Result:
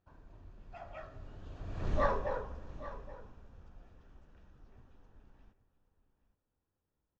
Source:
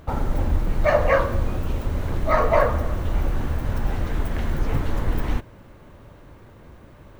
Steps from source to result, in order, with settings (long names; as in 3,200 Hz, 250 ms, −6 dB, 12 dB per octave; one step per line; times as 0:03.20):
source passing by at 0:01.95, 47 m/s, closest 4.3 metres
Chebyshev low-pass filter 6,700 Hz, order 4
notch filter 2,100 Hz, Q 8.3
on a send: single-tap delay 824 ms −15.5 dB
on the sum: level −6.5 dB